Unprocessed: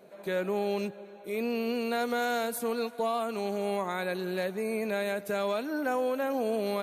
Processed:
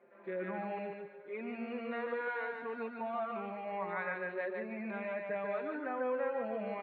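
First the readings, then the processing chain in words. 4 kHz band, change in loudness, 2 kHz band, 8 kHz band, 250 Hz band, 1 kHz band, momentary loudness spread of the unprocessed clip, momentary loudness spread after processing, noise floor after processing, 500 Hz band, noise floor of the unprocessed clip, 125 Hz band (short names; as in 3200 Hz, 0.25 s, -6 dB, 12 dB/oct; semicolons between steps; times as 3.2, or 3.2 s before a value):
-19.5 dB, -7.5 dB, -4.0 dB, under -35 dB, -9.0 dB, -6.5 dB, 3 LU, 6 LU, -56 dBFS, -7.5 dB, -48 dBFS, -9.5 dB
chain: speaker cabinet 210–2200 Hz, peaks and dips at 260 Hz -6 dB, 440 Hz -4 dB, 700 Hz -5 dB, 1900 Hz +6 dB; feedback echo 0.146 s, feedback 33%, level -3.5 dB; endless flanger 5.2 ms -0.66 Hz; gain -3 dB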